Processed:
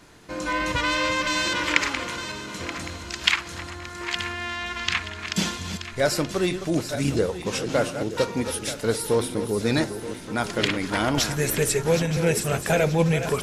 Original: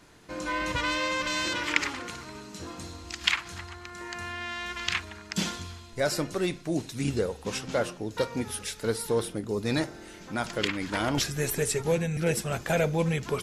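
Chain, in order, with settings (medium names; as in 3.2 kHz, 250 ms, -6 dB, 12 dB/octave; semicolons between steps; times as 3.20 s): backward echo that repeats 464 ms, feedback 58%, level -9.5 dB; 4.56–5.19 s: treble shelf 10 kHz -7.5 dB; trim +4.5 dB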